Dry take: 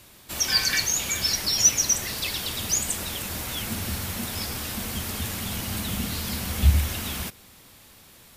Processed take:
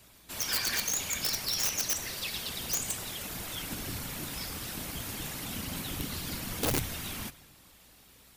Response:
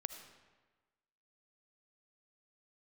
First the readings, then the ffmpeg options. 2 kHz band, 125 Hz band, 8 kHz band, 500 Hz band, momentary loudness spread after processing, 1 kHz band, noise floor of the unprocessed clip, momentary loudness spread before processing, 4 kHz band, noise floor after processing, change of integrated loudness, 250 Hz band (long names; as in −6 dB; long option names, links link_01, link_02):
−6.5 dB, −12.0 dB, −9.0 dB, −3.0 dB, 9 LU, −5.0 dB, −51 dBFS, 10 LU, −8.0 dB, −58 dBFS, −7.5 dB, −6.5 dB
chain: -filter_complex "[0:a]asplit=2[link_01][link_02];[1:a]atrim=start_sample=2205,lowshelf=frequency=480:gain=-2.5[link_03];[link_02][link_03]afir=irnorm=-1:irlink=0,volume=-3.5dB[link_04];[link_01][link_04]amix=inputs=2:normalize=0,afftfilt=real='hypot(re,im)*cos(2*PI*random(0))':imag='hypot(re,im)*sin(2*PI*random(1))':win_size=512:overlap=0.75,aeval=exprs='(mod(8.41*val(0)+1,2)-1)/8.41':channel_layout=same,bandreject=frequency=50:width_type=h:width=6,bandreject=frequency=100:width_type=h:width=6,bandreject=frequency=150:width_type=h:width=6,aeval=exprs='val(0)+0.000708*(sin(2*PI*60*n/s)+sin(2*PI*2*60*n/s)/2+sin(2*PI*3*60*n/s)/3+sin(2*PI*4*60*n/s)/4+sin(2*PI*5*60*n/s)/5)':channel_layout=same,volume=-4dB"